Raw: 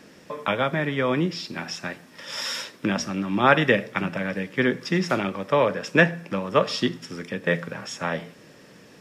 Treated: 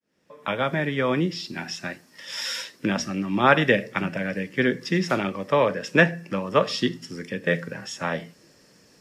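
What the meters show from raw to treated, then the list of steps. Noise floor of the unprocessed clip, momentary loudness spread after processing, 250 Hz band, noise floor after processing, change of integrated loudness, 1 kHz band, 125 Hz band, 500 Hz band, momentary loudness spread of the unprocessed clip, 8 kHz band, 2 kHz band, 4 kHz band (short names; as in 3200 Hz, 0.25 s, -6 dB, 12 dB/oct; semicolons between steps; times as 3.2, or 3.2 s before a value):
-50 dBFS, 13 LU, 0.0 dB, -57 dBFS, 0.0 dB, -0.5 dB, 0.0 dB, 0.0 dB, 13 LU, 0.0 dB, 0.0 dB, 0.0 dB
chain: opening faded in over 0.70 s; spectral noise reduction 8 dB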